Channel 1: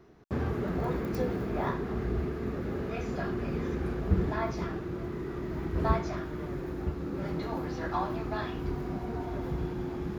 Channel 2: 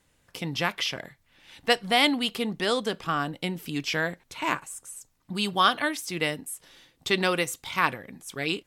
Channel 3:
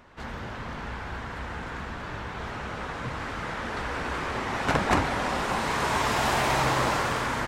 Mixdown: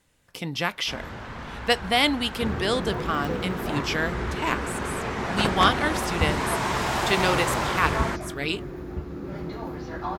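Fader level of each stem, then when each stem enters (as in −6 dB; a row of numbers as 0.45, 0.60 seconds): 0.0, +0.5, −1.0 decibels; 2.10, 0.00, 0.70 seconds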